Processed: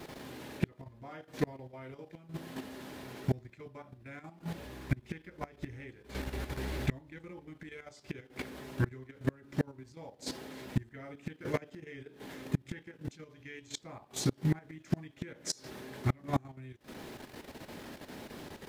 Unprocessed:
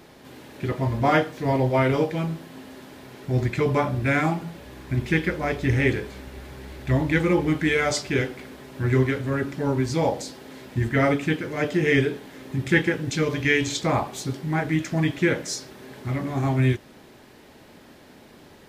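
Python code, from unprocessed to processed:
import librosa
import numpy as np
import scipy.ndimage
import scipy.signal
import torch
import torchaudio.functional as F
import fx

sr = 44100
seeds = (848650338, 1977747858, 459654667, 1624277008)

y = fx.quant_dither(x, sr, seeds[0], bits=12, dither='triangular')
y = fx.gate_flip(y, sr, shuts_db=-18.0, range_db=-28)
y = fx.level_steps(y, sr, step_db=10)
y = y * 10.0 ** (4.0 / 20.0)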